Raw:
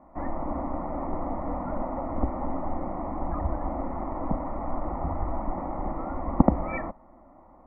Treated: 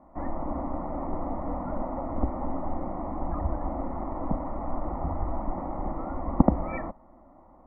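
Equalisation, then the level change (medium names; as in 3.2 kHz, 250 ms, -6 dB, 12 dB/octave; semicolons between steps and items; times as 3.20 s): distance through air 380 m; 0.0 dB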